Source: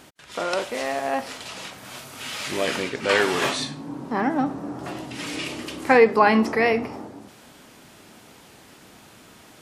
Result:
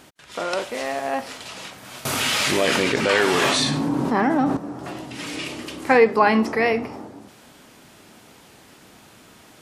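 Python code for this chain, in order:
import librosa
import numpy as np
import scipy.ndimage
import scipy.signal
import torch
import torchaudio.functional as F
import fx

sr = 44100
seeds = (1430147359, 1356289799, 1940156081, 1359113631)

y = fx.env_flatten(x, sr, amount_pct=70, at=(2.05, 4.57))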